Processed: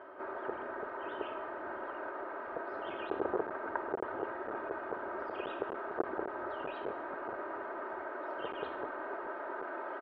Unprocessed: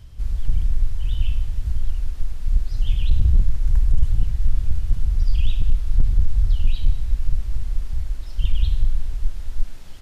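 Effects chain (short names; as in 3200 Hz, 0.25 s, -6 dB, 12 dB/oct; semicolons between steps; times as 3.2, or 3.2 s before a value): comb 3.2 ms, depth 62%; hard clip -4.5 dBFS, distortion -25 dB; elliptic band-pass 390–1500 Hz, stop band 80 dB; gain +16 dB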